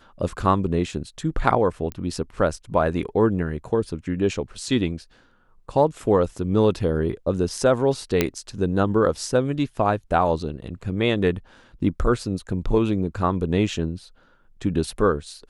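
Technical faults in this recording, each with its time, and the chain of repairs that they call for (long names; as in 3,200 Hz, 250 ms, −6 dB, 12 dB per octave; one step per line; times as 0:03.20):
0:01.92: click −17 dBFS
0:08.21: click −4 dBFS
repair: click removal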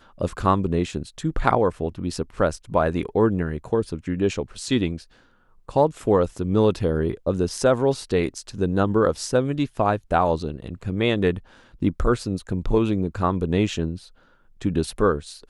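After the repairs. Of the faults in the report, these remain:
none of them is left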